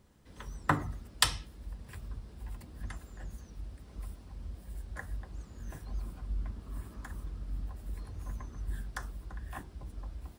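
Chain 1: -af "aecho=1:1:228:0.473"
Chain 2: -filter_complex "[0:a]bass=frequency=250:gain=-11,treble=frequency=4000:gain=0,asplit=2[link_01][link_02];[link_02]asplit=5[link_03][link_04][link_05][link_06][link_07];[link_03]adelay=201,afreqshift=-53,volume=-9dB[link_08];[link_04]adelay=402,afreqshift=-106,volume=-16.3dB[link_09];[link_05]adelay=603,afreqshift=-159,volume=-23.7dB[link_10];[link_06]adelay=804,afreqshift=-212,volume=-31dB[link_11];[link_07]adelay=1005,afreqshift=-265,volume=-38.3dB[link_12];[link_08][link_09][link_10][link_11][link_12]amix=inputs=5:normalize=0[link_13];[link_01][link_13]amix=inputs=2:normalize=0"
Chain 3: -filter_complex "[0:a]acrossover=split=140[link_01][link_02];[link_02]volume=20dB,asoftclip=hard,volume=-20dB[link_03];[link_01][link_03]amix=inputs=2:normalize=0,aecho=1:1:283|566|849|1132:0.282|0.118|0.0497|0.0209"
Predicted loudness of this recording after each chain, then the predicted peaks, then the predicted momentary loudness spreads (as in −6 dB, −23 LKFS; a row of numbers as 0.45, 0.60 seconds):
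−39.0, −38.5, −40.5 LKFS; −4.5, −4.5, −18.0 dBFS; 15, 21, 13 LU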